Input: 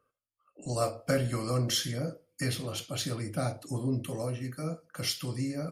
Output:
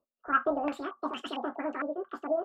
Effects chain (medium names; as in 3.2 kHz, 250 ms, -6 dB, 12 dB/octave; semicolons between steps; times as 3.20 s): speed mistake 33 rpm record played at 78 rpm; step-sequenced low-pass 4.4 Hz 560–3000 Hz; trim -3.5 dB